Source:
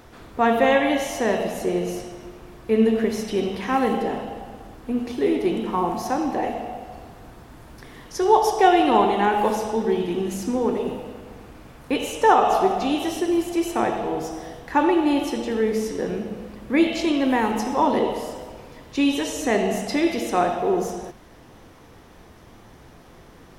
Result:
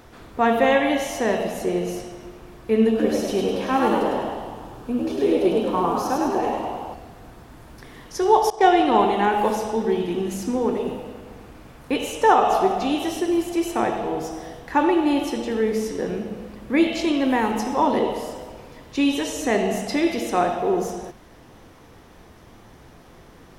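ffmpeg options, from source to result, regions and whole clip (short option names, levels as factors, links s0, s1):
-filter_complex "[0:a]asettb=1/sr,asplit=3[s0][s1][s2];[s0]atrim=end=2.894[s3];[s1]atrim=start=2.89:end=6.94,asetpts=PTS-STARTPTS,afade=t=in:d=0.004:c=qsin,afade=t=out:st=4.046:d=0.004:c=qsin,bandreject=f=2000:w=5.2,asplit=7[s4][s5][s6][s7][s8][s9][s10];[s5]adelay=103,afreqshift=78,volume=0.668[s11];[s6]adelay=206,afreqshift=156,volume=0.313[s12];[s7]adelay=309,afreqshift=234,volume=0.148[s13];[s8]adelay=412,afreqshift=312,volume=0.0692[s14];[s9]adelay=515,afreqshift=390,volume=0.0327[s15];[s10]adelay=618,afreqshift=468,volume=0.0153[s16];[s4][s11][s12][s13][s14][s15][s16]amix=inputs=7:normalize=0,atrim=end_sample=178605[s17];[s2]atrim=start=6.936[s18];[s3][s17]acrossfade=d=0.004:c1=hsin:c2=qsin[s19];[s19][s18]acrossfade=d=0.004:c1=qsin:c2=hsin,asettb=1/sr,asplit=3[s20][s21][s22];[s20]atrim=end=8.504[s23];[s21]atrim=start=8.5:end=8.99,asetpts=PTS-STARTPTS,afade=t=in:d=0.004:c=qsin,afade=t=out:st=0.486:d=0.004:c=qsin,lowpass=8700,agate=range=0.0224:threshold=0.112:ratio=3:release=100:detection=peak,bandreject=f=2700:w=14[s24];[s22]atrim=start=8.986[s25];[s23][s24]acrossfade=d=0.004:c1=hsin:c2=qsin[s26];[s26][s25]acrossfade=d=0.004:c1=qsin:c2=hsin"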